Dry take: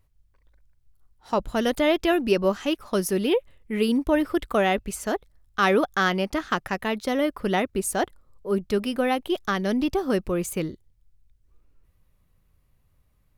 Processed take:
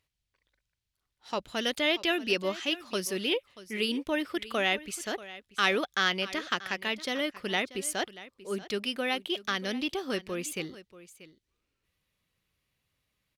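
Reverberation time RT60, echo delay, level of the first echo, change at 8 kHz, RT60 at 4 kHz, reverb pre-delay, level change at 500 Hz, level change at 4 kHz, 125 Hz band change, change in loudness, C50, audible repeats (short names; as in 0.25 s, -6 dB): none, 0.635 s, -17.0 dB, -3.0 dB, none, none, -9.0 dB, +3.0 dB, -11.5 dB, -5.5 dB, none, 1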